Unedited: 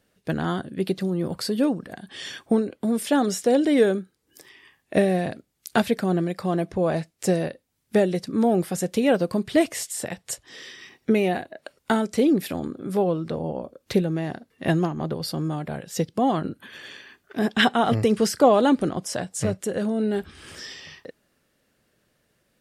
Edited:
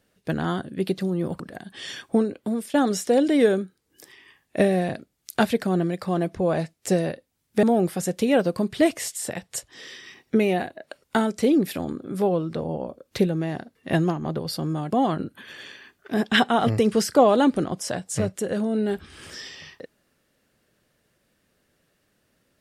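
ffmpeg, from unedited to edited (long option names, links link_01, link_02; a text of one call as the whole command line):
ffmpeg -i in.wav -filter_complex "[0:a]asplit=5[link_01][link_02][link_03][link_04][link_05];[link_01]atrim=end=1.402[link_06];[link_02]atrim=start=1.768:end=3.11,asetpts=PTS-STARTPTS,afade=type=out:start_time=1.022:duration=0.32:silence=0.223872[link_07];[link_03]atrim=start=3.11:end=8.002,asetpts=PTS-STARTPTS,afade=type=in:duration=0.004:curve=hsin:silence=0.223872[link_08];[link_04]atrim=start=8.378:end=15.662[link_09];[link_05]atrim=start=16.158[link_10];[link_07][link_08]concat=n=2:v=0:a=1[link_11];[link_06][link_11]acrossfade=duration=0.004:curve1=hsin:curve2=hsin[link_12];[link_12][link_09]acrossfade=duration=0.004:curve1=hsin:curve2=hsin[link_13];[link_13][link_10]acrossfade=duration=0.004:curve1=hsin:curve2=hsin" out.wav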